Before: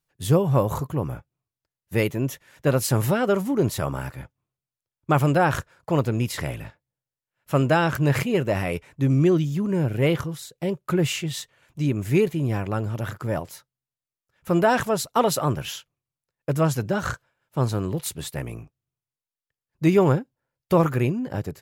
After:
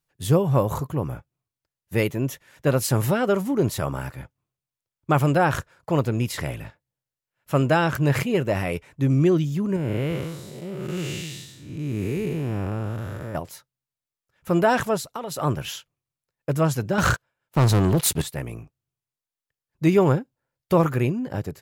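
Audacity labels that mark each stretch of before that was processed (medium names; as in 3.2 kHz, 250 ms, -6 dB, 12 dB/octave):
9.760000	13.350000	spectral blur width 297 ms
14.970000	15.390000	compression 8:1, threshold -28 dBFS
16.980000	18.220000	waveshaping leveller passes 3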